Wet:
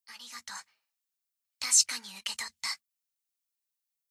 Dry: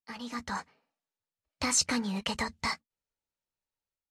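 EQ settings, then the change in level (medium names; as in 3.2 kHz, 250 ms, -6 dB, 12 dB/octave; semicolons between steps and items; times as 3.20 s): tilt EQ +4.5 dB/octave; peaking EQ 370 Hz -10 dB 2.1 oct; -7.5 dB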